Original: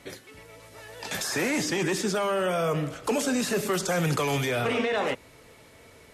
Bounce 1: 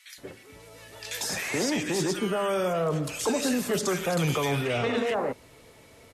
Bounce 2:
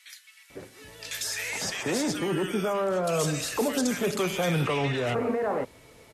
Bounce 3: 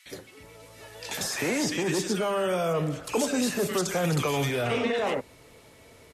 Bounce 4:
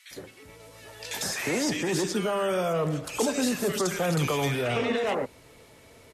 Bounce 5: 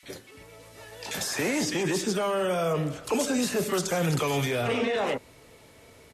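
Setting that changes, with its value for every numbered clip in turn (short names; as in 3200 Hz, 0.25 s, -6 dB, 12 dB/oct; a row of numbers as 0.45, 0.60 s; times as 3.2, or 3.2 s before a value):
bands offset in time, time: 180, 500, 60, 110, 30 ms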